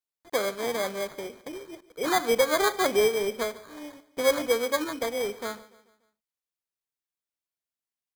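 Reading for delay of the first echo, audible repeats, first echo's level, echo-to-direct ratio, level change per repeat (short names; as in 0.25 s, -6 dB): 0.145 s, 3, -19.5 dB, -18.5 dB, -6.5 dB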